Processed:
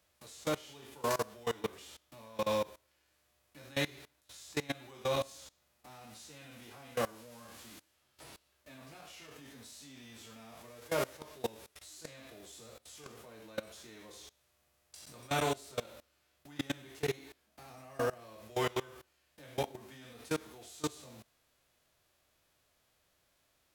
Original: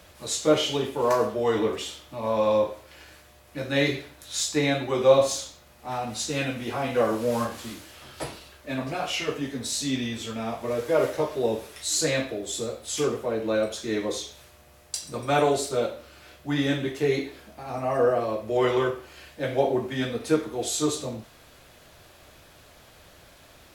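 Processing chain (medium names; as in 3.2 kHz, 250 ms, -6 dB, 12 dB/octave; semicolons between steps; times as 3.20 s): formants flattened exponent 0.6; level held to a coarse grid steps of 22 dB; trim -8.5 dB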